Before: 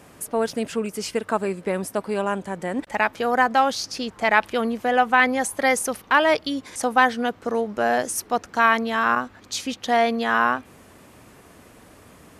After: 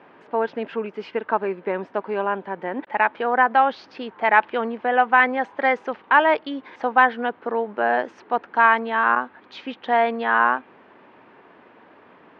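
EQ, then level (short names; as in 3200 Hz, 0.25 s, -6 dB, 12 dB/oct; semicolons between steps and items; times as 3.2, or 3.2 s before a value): air absorption 83 m; speaker cabinet 250–3200 Hz, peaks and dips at 380 Hz +3 dB, 910 Hz +7 dB, 1600 Hz +4 dB; -1.0 dB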